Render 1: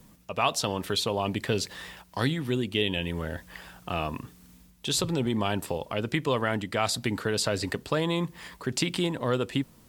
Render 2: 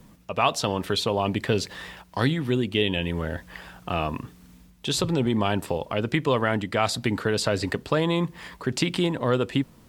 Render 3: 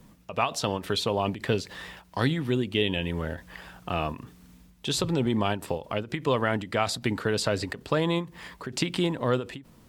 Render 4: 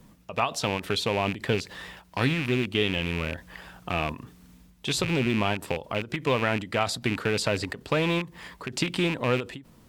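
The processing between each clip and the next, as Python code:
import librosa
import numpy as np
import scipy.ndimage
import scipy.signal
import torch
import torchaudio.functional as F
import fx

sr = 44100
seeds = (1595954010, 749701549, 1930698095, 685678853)

y1 = fx.high_shelf(x, sr, hz=5000.0, db=-7.5)
y1 = y1 * 10.0 ** (4.0 / 20.0)
y2 = fx.end_taper(y1, sr, db_per_s=190.0)
y2 = y2 * 10.0 ** (-2.0 / 20.0)
y3 = fx.rattle_buzz(y2, sr, strikes_db=-31.0, level_db=-20.0)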